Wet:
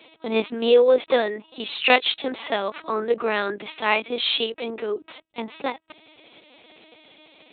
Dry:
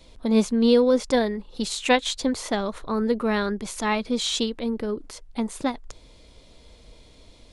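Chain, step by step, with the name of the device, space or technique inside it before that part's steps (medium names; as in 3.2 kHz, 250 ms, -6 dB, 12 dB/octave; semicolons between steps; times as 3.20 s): talking toy (LPC vocoder at 8 kHz pitch kept; high-pass 370 Hz 12 dB/octave; peaking EQ 2.6 kHz +7 dB 0.44 oct); trim +4.5 dB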